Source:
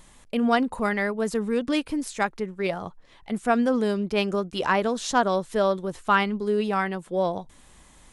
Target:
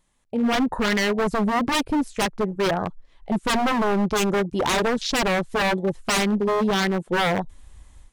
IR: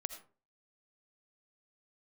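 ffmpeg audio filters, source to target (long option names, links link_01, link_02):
-af "dynaudnorm=framelen=400:gausssize=3:maxgain=13.5dB,afwtdn=0.0501,aeval=exprs='0.158*(abs(mod(val(0)/0.158+3,4)-2)-1)':channel_layout=same"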